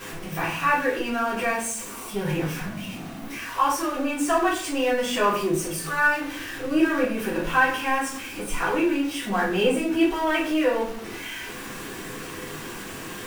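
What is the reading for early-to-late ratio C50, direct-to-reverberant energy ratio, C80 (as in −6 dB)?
5.0 dB, −10.0 dB, 10.0 dB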